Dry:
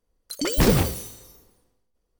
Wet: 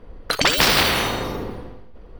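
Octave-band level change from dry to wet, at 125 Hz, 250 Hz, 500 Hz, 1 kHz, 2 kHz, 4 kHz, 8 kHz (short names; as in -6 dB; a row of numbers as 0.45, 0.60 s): -4.5, -2.5, +2.0, +11.0, +14.0, +13.5, +5.0 dB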